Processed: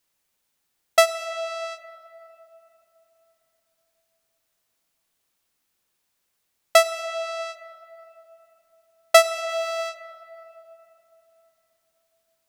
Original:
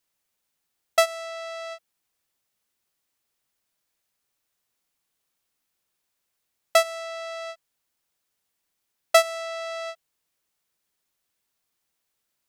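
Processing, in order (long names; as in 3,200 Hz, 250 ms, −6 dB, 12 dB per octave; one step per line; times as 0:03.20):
0:09.49–0:09.89: converter with a step at zero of −42.5 dBFS
on a send: convolution reverb RT60 3.6 s, pre-delay 3 ms, DRR 12 dB
on the sum: level +3.5 dB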